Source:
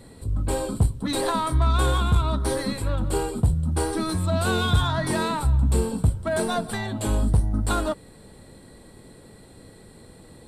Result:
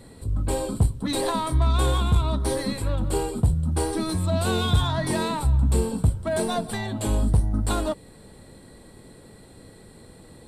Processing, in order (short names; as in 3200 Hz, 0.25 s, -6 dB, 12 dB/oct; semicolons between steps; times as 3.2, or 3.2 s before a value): dynamic EQ 1400 Hz, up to -6 dB, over -44 dBFS, Q 2.8